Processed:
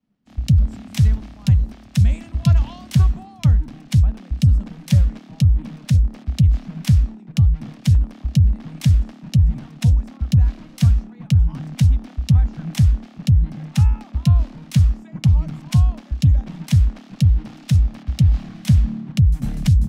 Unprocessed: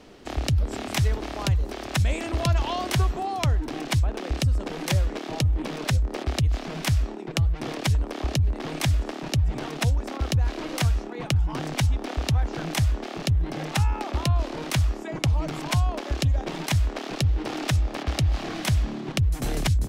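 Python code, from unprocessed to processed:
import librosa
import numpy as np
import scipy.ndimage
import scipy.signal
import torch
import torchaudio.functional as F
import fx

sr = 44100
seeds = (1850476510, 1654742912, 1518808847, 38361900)

y = fx.low_shelf_res(x, sr, hz=280.0, db=10.5, q=3.0)
y = fx.band_widen(y, sr, depth_pct=100)
y = F.gain(torch.from_numpy(y), -4.0).numpy()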